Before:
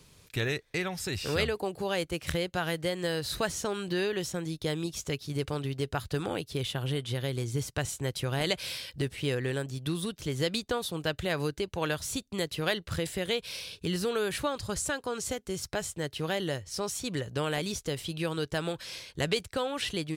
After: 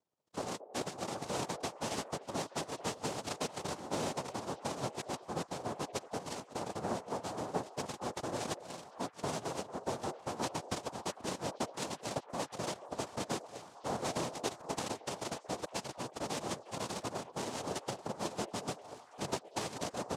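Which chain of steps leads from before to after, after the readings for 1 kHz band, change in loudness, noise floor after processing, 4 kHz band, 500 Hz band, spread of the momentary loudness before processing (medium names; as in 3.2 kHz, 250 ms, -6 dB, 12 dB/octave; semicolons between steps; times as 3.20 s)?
0.0 dB, -7.5 dB, -58 dBFS, -9.5 dB, -7.5 dB, 4 LU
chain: expander on every frequency bin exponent 2; bass shelf 230 Hz -4.5 dB; transient shaper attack -1 dB, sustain -6 dB; compression, threshold -40 dBFS, peak gain reduction 12.5 dB; sample-rate reducer 1.7 kHz, jitter 0%; noise-vocoded speech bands 2; on a send: repeats whose band climbs or falls 226 ms, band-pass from 550 Hz, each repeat 0.7 oct, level -10 dB; on the sum: trim +6 dB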